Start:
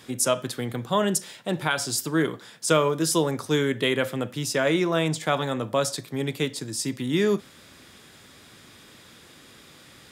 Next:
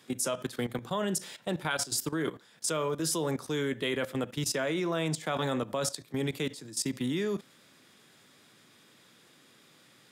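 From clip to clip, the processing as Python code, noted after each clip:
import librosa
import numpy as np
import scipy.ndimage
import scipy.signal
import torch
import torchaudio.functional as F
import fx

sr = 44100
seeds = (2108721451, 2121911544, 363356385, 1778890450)

y = scipy.signal.sosfilt(scipy.signal.butter(4, 120.0, 'highpass', fs=sr, output='sos'), x)
y = fx.level_steps(y, sr, step_db=15)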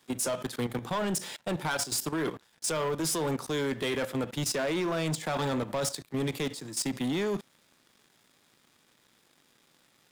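y = fx.peak_eq(x, sr, hz=870.0, db=4.5, octaves=0.42)
y = fx.leveller(y, sr, passes=3)
y = y * librosa.db_to_amplitude(-7.0)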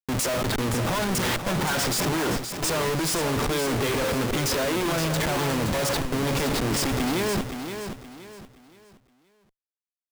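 y = fx.lowpass(x, sr, hz=3700.0, slope=6)
y = fx.schmitt(y, sr, flips_db=-45.5)
y = fx.echo_feedback(y, sr, ms=521, feedback_pct=32, wet_db=-8)
y = y * librosa.db_to_amplitude(8.0)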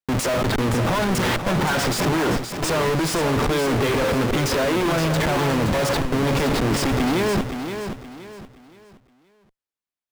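y = fx.high_shelf(x, sr, hz=4500.0, db=-8.5)
y = y * librosa.db_to_amplitude(5.0)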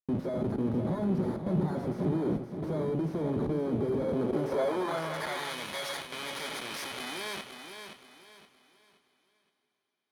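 y = fx.bit_reversed(x, sr, seeds[0], block=16)
y = fx.rev_double_slope(y, sr, seeds[1], early_s=0.25, late_s=4.6, knee_db=-20, drr_db=9.0)
y = fx.filter_sweep_bandpass(y, sr, from_hz=240.0, to_hz=2600.0, start_s=4.0, end_s=5.55, q=0.9)
y = y * librosa.db_to_amplitude(-5.5)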